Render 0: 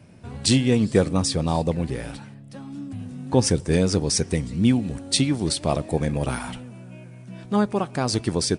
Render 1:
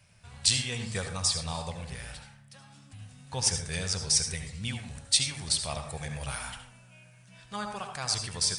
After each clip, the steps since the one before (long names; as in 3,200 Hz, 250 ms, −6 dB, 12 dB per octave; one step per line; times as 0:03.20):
guitar amp tone stack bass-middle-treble 10-0-10
on a send at −5 dB: convolution reverb RT60 0.50 s, pre-delay 63 ms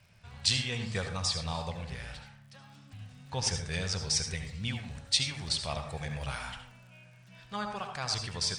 low-pass filter 5,200 Hz 12 dB per octave
surface crackle 63 per second −52 dBFS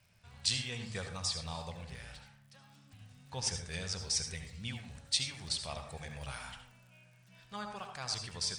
high-shelf EQ 7,700 Hz +8.5 dB
mains-hum notches 50/100/150 Hz
level −6.5 dB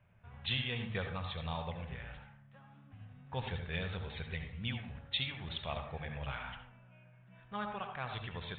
low-pass that shuts in the quiet parts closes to 1,500 Hz, open at −30.5 dBFS
downsampling to 8,000 Hz
level +3 dB